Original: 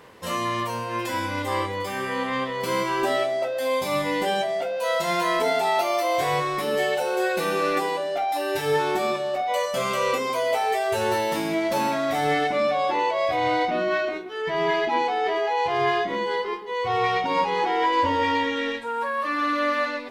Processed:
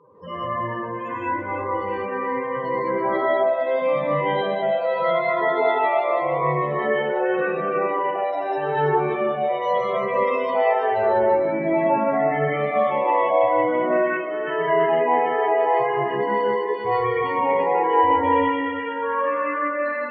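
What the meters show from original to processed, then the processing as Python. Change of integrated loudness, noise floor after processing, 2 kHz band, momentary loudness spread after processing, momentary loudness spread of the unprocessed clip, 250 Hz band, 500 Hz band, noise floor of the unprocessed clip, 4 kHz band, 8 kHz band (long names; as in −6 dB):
+2.5 dB, −29 dBFS, 0.0 dB, 7 LU, 5 LU, +1.5 dB, +4.0 dB, −30 dBFS, −9.0 dB, below −30 dB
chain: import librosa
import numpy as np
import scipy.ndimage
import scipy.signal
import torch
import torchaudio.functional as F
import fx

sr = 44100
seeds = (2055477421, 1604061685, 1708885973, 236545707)

p1 = fx.spec_topn(x, sr, count=16)
p2 = fx.high_shelf(p1, sr, hz=4300.0, db=-7.5)
p3 = fx.dereverb_blind(p2, sr, rt60_s=1.6)
p4 = fx.air_absorb(p3, sr, metres=88.0)
p5 = p4 + fx.echo_alternate(p4, sr, ms=166, hz=880.0, feedback_pct=55, wet_db=-3, dry=0)
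p6 = fx.rev_gated(p5, sr, seeds[0], gate_ms=220, shape='rising', drr_db=-7.0)
y = F.gain(torch.from_numpy(p6), -3.0).numpy()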